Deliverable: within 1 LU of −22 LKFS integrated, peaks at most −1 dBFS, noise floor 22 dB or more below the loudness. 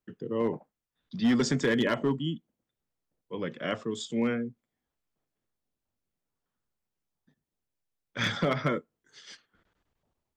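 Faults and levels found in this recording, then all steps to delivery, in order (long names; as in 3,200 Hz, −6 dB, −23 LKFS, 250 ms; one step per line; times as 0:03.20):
share of clipped samples 0.3%; peaks flattened at −19.0 dBFS; integrated loudness −29.5 LKFS; sample peak −19.0 dBFS; target loudness −22.0 LKFS
→ clipped peaks rebuilt −19 dBFS
level +7.5 dB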